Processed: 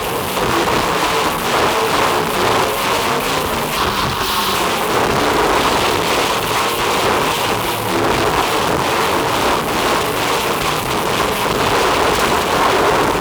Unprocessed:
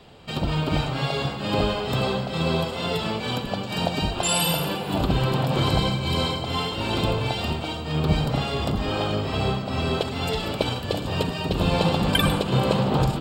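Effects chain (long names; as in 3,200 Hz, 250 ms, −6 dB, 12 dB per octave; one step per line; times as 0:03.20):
linear delta modulator 64 kbit/s, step −22.5 dBFS
harmonic generator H 3 −17 dB, 8 −9 dB, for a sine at −6 dBFS
0:03.77–0:04.55: phaser with its sweep stopped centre 2,200 Hz, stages 6
fuzz pedal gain 41 dB, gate −35 dBFS
graphic EQ with 15 bands 400 Hz +9 dB, 1,000 Hz +12 dB, 2,500 Hz +5 dB
frequency shifter +31 Hz
highs frequency-modulated by the lows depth 0.52 ms
level −5.5 dB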